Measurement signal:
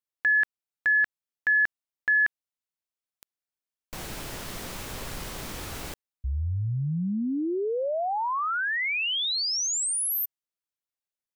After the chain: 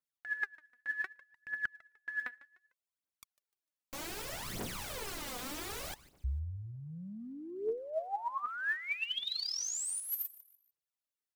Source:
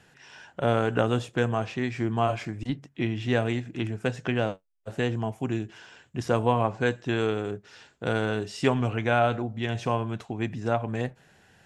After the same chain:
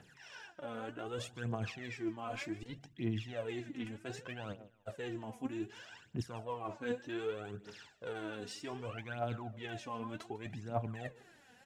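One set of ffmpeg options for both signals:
-af "lowshelf=f=71:g=-11.5,areverse,acompressor=threshold=0.0251:ratio=12:attack=7.4:release=231:knee=1:detection=peak,areverse,aecho=1:1:150|300|450:0.106|0.0371|0.013,aphaser=in_gain=1:out_gain=1:delay=4.2:decay=0.71:speed=0.65:type=triangular,volume=0.473"

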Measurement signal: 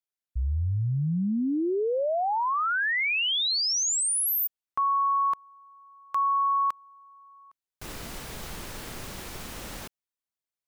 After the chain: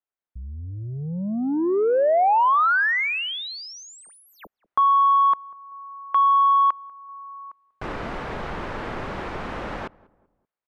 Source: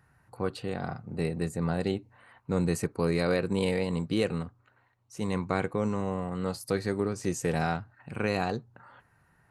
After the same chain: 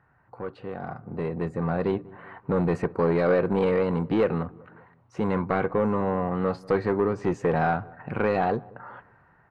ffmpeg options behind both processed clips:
-filter_complex "[0:a]asplit=2[s0][s1];[s1]acompressor=threshold=0.0158:ratio=6:release=863:detection=peak,volume=0.944[s2];[s0][s2]amix=inputs=2:normalize=0,asoftclip=type=tanh:threshold=0.0841,lowpass=1500,asplit=2[s3][s4];[s4]adelay=192,lowpass=f=1100:p=1,volume=0.0794,asplit=2[s5][s6];[s6]adelay=192,lowpass=f=1100:p=1,volume=0.49,asplit=2[s7][s8];[s8]adelay=192,lowpass=f=1100:p=1,volume=0.49[s9];[s3][s5][s7][s9]amix=inputs=4:normalize=0,dynaudnorm=f=250:g=11:m=3.16,lowshelf=f=290:g=-9"

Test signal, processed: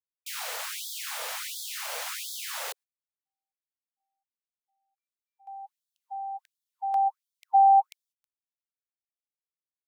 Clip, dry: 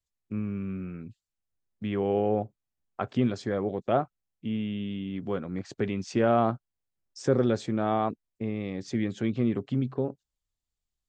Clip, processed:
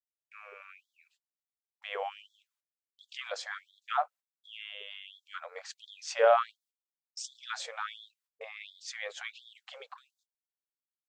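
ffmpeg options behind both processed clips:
-af "agate=range=0.0398:threshold=0.00355:ratio=16:detection=peak,afftfilt=real='re*gte(b*sr/1024,430*pow(3300/430,0.5+0.5*sin(2*PI*1.4*pts/sr)))':imag='im*gte(b*sr/1024,430*pow(3300/430,0.5+0.5*sin(2*PI*1.4*pts/sr)))':win_size=1024:overlap=0.75,volume=1.5"

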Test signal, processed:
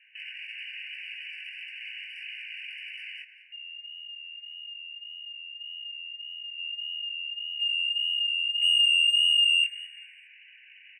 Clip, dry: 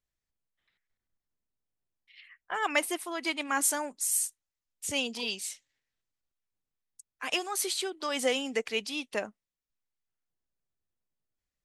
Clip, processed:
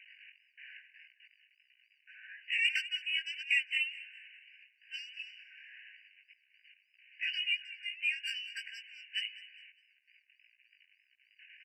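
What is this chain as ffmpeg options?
-filter_complex "[0:a]aeval=exprs='val(0)+0.5*0.01*sgn(val(0))':c=same,lowpass=f=3100:t=q:w=0.5098,lowpass=f=3100:t=q:w=0.6013,lowpass=f=3100:t=q:w=0.9,lowpass=f=3100:t=q:w=2.563,afreqshift=-3600,areverse,acompressor=mode=upward:threshold=0.00708:ratio=2.5,areverse,asoftclip=type=tanh:threshold=0.0794,highpass=f=2400:t=q:w=2.2,asplit=2[s0][s1];[s1]aecho=0:1:203|406|609:0.141|0.048|0.0163[s2];[s0][s2]amix=inputs=2:normalize=0,flanger=delay=15.5:depth=5.9:speed=1.7,afftfilt=real='re*eq(mod(floor(b*sr/1024/1500),2),1)':imag='im*eq(mod(floor(b*sr/1024/1500),2),1)':win_size=1024:overlap=0.75"

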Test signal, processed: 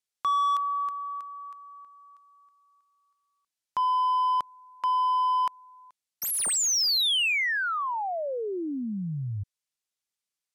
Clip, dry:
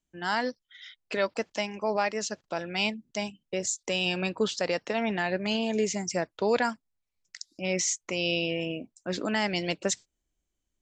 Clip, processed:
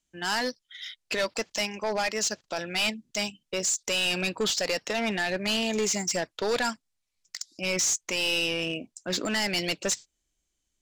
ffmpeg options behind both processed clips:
-af "crystalizer=i=5:c=0,volume=12.6,asoftclip=hard,volume=0.0794,adynamicsmooth=sensitivity=5:basefreq=7200"

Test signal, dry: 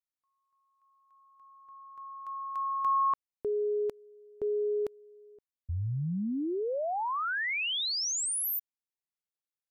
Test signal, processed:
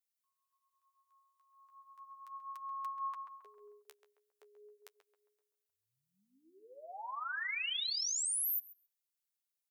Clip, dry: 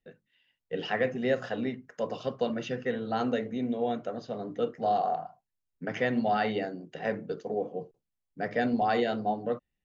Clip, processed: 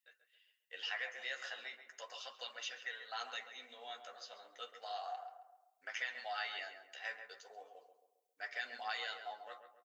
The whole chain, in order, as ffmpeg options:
-filter_complex "[0:a]highpass=960,highshelf=f=3800:g=-7,flanger=delay=6.6:depth=7.7:regen=19:speed=0.36:shape=sinusoidal,aderivative,asplit=2[s0][s1];[s1]adelay=135,lowpass=f=1600:p=1,volume=0.398,asplit=2[s2][s3];[s3]adelay=135,lowpass=f=1600:p=1,volume=0.47,asplit=2[s4][s5];[s5]adelay=135,lowpass=f=1600:p=1,volume=0.47,asplit=2[s6][s7];[s7]adelay=135,lowpass=f=1600:p=1,volume=0.47,asplit=2[s8][s9];[s9]adelay=135,lowpass=f=1600:p=1,volume=0.47[s10];[s0][s2][s4][s6][s8][s10]amix=inputs=6:normalize=0,acompressor=threshold=0.00282:ratio=2.5:attack=35:release=213:knee=6:detection=rms,volume=4.47"

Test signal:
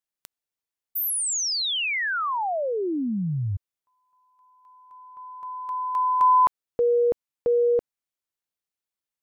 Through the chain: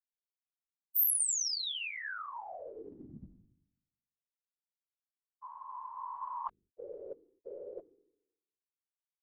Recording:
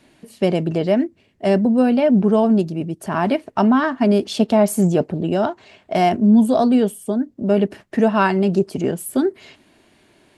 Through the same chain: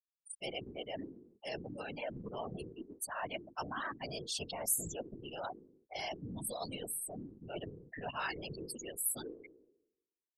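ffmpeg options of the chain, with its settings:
-af "aderivative,afftfilt=real='re*gte(hypot(re,im),0.0178)':imag='im*gte(hypot(re,im),0.0178)':win_size=1024:overlap=0.75,bandreject=f=50:t=h:w=6,bandreject=f=100:t=h:w=6,bandreject=f=150:t=h:w=6,bandreject=f=200:t=h:w=6,bandreject=f=250:t=h:w=6,bandreject=f=300:t=h:w=6,bandreject=f=350:t=h:w=6,bandreject=f=400:t=h:w=6,areverse,acompressor=mode=upward:threshold=0.0158:ratio=2.5:attack=71:release=30:knee=2.83:detection=peak,areverse,afftfilt=real='hypot(re,im)*cos(2*PI*random(0))':imag='hypot(re,im)*sin(2*PI*random(1))':win_size=512:overlap=0.75,asubboost=boost=2.5:cutoff=120"

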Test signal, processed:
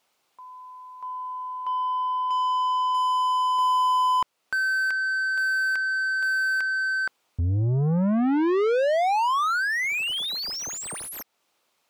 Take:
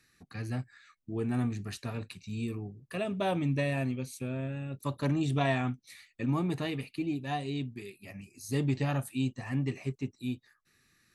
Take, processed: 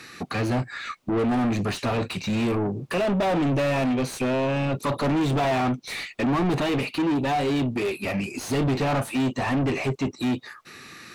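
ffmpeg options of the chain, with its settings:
-filter_complex "[0:a]equalizer=f=1700:w=2.9:g=-7,asplit=2[s0][s1];[s1]acompressor=threshold=0.00794:ratio=6,volume=1.19[s2];[s0][s2]amix=inputs=2:normalize=0,asplit=2[s3][s4];[s4]highpass=f=720:p=1,volume=50.1,asoftclip=type=tanh:threshold=0.168[s5];[s3][s5]amix=inputs=2:normalize=0,lowpass=f=1400:p=1,volume=0.501"

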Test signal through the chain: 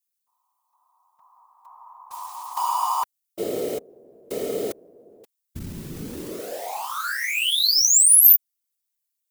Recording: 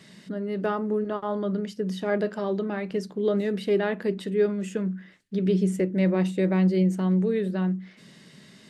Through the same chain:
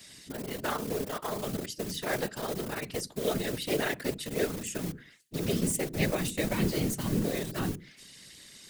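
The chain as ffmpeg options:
-filter_complex "[0:a]tremolo=f=180:d=0.71,asplit=2[s0][s1];[s1]aeval=exprs='val(0)*gte(abs(val(0)),0.0422)':c=same,volume=0.316[s2];[s0][s2]amix=inputs=2:normalize=0,afftfilt=real='hypot(re,im)*cos(2*PI*random(0))':imag='hypot(re,im)*sin(2*PI*random(1))':win_size=512:overlap=0.75,crystalizer=i=8.5:c=0,volume=0.891"

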